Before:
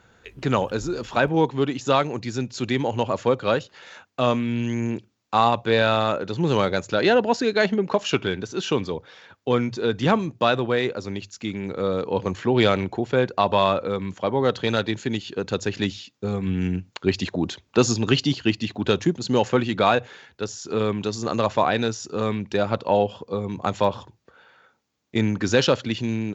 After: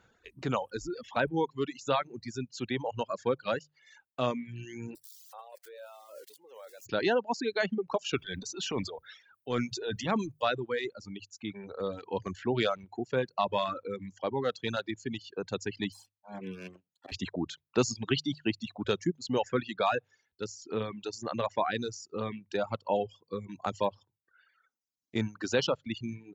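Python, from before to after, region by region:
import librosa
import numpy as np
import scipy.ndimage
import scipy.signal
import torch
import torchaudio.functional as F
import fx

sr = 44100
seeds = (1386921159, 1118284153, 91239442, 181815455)

y = fx.chain(x, sr, fx.crossing_spikes(level_db=-17.0),
    fx.level_steps(step_db=16),
    fx.ladder_highpass(hz=460.0, resonance_pct=55), at=(4.95, 6.86))
y = fx.chain(y, sr, fx.high_shelf(hz=4200.0, db=9.0),
    fx.transient(attack_db=-7, sustain_db=7), at=(8.16, 10.43))
y = fx.chain(y, sr, fx.lower_of_two(delay_ms=1.2),
    fx.highpass(hz=150.0, slope=24),
    fx.auto_swell(attack_ms=160.0), at=(15.92, 17.12))
y = fx.dereverb_blind(y, sr, rt60_s=1.4)
y = fx.hum_notches(y, sr, base_hz=50, count=3)
y = fx.dereverb_blind(y, sr, rt60_s=0.87)
y = F.gain(torch.from_numpy(y), -8.0).numpy()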